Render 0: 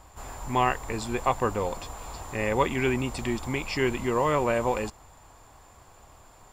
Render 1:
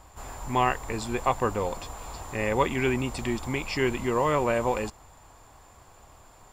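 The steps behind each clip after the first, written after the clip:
no processing that can be heard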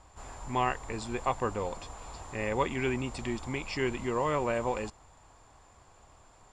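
low-pass filter 9,100 Hz 24 dB per octave
level −5 dB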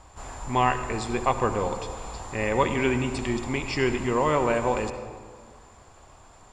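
convolution reverb RT60 1.7 s, pre-delay 59 ms, DRR 9 dB
level +6 dB

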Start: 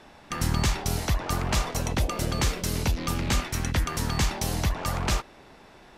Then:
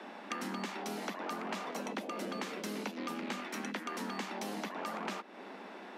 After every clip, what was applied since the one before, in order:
Butterworth high-pass 190 Hz 96 dB per octave
bass and treble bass +2 dB, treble −11 dB
downward compressor 6 to 1, threshold −41 dBFS, peak gain reduction 16 dB
level +4 dB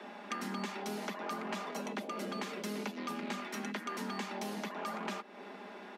comb filter 4.9 ms, depth 49%
level −1.5 dB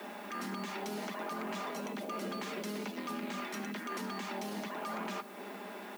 brickwall limiter −33.5 dBFS, peak gain reduction 10 dB
background noise blue −64 dBFS
on a send at −16 dB: convolution reverb RT60 3.1 s, pre-delay 3 ms
on the sum: level +3 dB

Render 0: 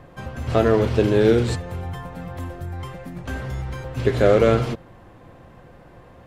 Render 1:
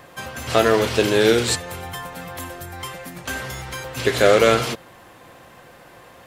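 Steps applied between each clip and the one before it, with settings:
spectral tilt +3.5 dB per octave
level +4.5 dB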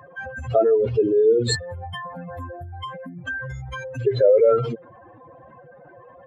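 expanding power law on the bin magnitudes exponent 3.2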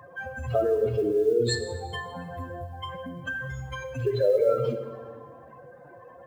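in parallel at 0 dB: downward compressor 12 to 1, threshold −26 dBFS, peak gain reduction 15 dB
on the sum: log-companded quantiser 8 bits
dense smooth reverb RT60 1.7 s, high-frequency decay 0.8×, DRR 5.5 dB
level −8.5 dB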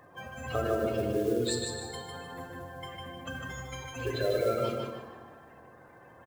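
ceiling on every frequency bin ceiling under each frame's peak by 20 dB
repeating echo 152 ms, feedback 31%, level −5 dB
level −6.5 dB

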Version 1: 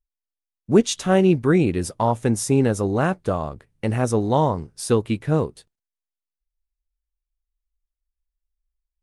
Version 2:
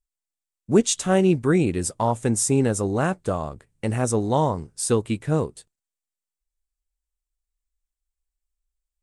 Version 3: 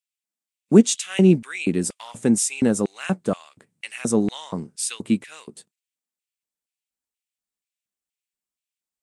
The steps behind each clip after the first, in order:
parametric band 7,900 Hz +10.5 dB 0.56 octaves; level −2 dB
auto-filter high-pass square 2.1 Hz 200–2,500 Hz

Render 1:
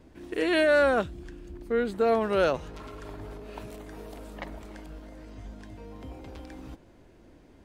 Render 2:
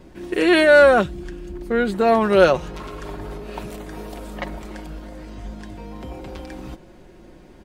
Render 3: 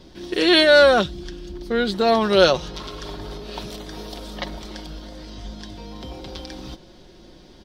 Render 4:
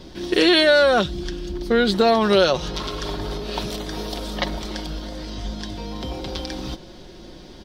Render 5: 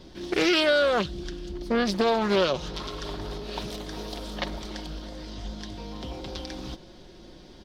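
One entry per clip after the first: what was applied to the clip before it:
comb filter 5.5 ms, depth 43%; level +8.5 dB
flat-topped bell 4,300 Hz +12.5 dB 1.1 octaves; level −1.5 dB
downward compressor 6 to 1, threshold −18 dBFS, peak gain reduction 9.5 dB; level +5.5 dB
highs frequency-modulated by the lows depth 0.36 ms; level −6.5 dB

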